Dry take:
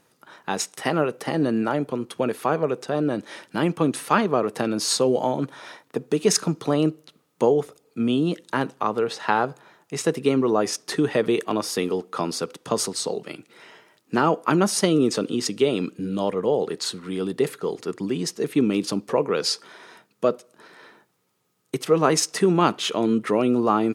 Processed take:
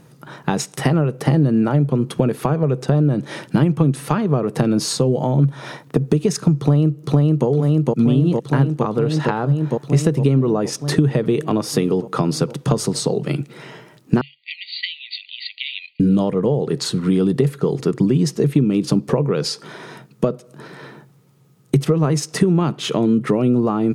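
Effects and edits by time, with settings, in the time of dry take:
6.57–7.47 s: echo throw 460 ms, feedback 75%, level -2.5 dB
14.21–16.00 s: brick-wall FIR band-pass 1.9–4.7 kHz
whole clip: peaking EQ 140 Hz +14.5 dB 0.35 oct; compression 10:1, threshold -27 dBFS; bass shelf 430 Hz +11.5 dB; trim +6.5 dB

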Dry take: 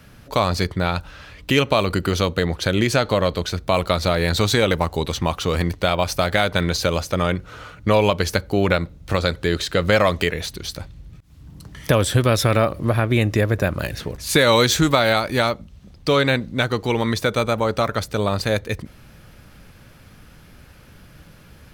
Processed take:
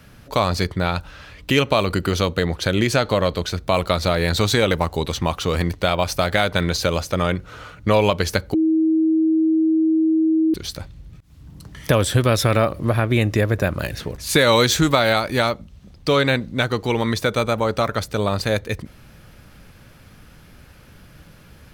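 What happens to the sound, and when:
8.54–10.54 s: bleep 319 Hz -14 dBFS

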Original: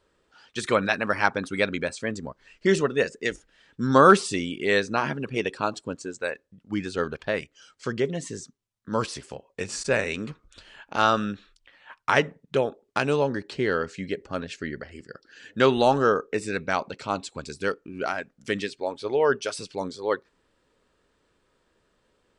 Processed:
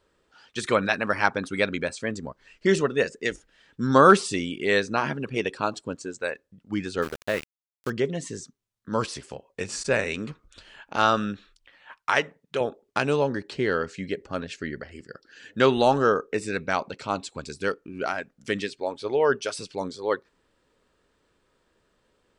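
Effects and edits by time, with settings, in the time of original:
7.02–7.90 s: small samples zeroed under -32.5 dBFS
11.97–12.61 s: bass shelf 380 Hz -11 dB

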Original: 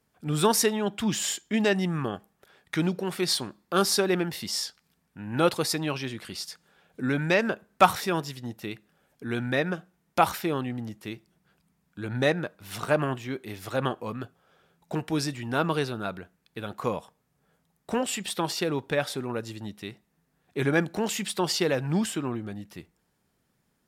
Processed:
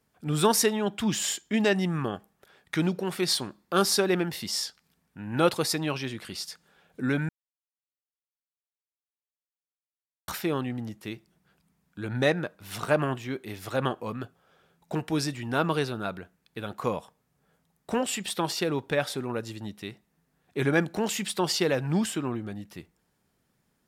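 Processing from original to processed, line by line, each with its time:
7.29–10.28 s: mute

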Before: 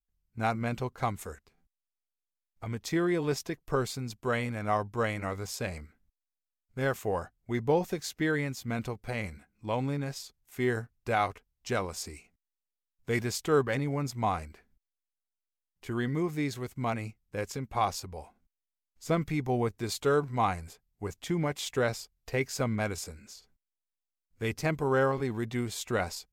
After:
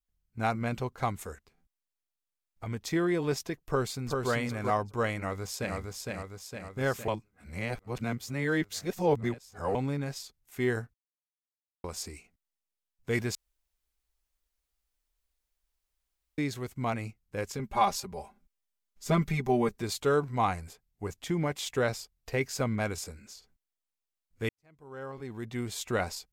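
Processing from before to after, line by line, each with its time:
3.63–4.31 s: echo throw 390 ms, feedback 15%, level -3.5 dB
5.16–5.76 s: echo throw 460 ms, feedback 60%, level -3 dB
7.08–9.75 s: reverse
10.94–11.84 s: mute
13.35–16.38 s: room tone
17.59–19.82 s: comb 5 ms, depth 96%
24.49–25.77 s: fade in quadratic

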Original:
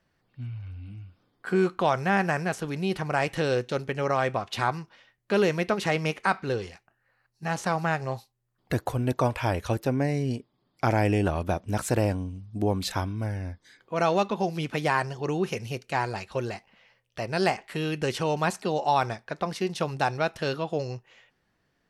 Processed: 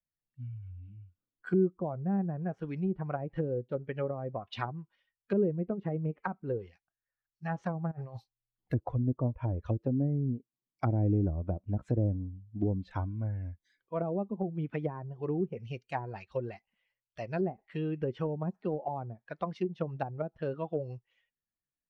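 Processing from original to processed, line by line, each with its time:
7.91–8.73 s: compressor with a negative ratio -36 dBFS
whole clip: expander on every frequency bin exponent 1.5; treble shelf 4.1 kHz -9.5 dB; low-pass that closes with the level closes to 370 Hz, closed at -26 dBFS

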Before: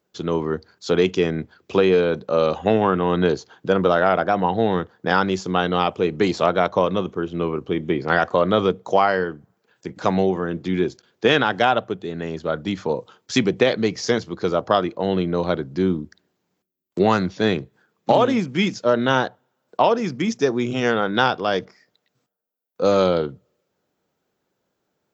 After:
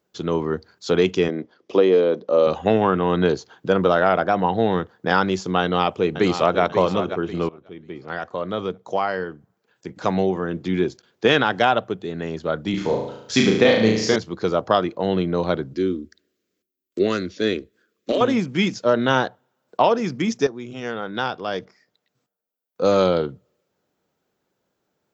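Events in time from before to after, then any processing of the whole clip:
1.28–2.47 s: cabinet simulation 250–5900 Hz, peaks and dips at 300 Hz +4 dB, 540 Hz +4 dB, 850 Hz -3 dB, 1.5 kHz -8 dB, 2.5 kHz -7 dB, 4.1 kHz -6 dB
5.61–6.61 s: echo throw 540 ms, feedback 40%, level -9 dB
7.49–10.71 s: fade in, from -21 dB
12.70–14.16 s: flutter echo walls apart 6.2 m, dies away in 0.74 s
15.73–18.21 s: static phaser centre 350 Hz, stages 4
20.47–22.94 s: fade in linear, from -13 dB

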